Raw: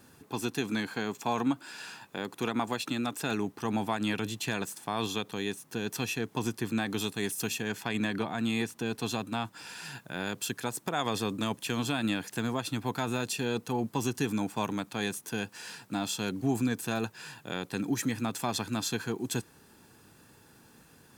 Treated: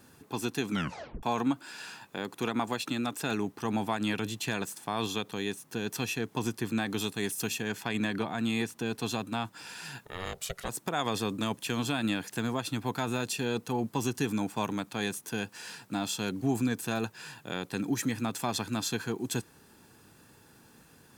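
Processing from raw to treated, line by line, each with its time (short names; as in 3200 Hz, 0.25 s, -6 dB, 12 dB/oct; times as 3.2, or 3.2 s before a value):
0.71 tape stop 0.52 s
10.05–10.69 ring modulator 280 Hz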